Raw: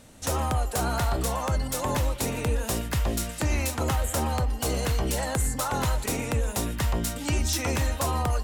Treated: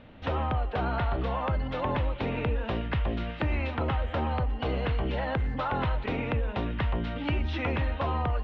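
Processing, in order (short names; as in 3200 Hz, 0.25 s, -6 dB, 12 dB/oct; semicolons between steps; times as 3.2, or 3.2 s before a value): steep low-pass 3300 Hz 36 dB/oct; compressor 2:1, threshold -29 dBFS, peak gain reduction 4.5 dB; gain +1.5 dB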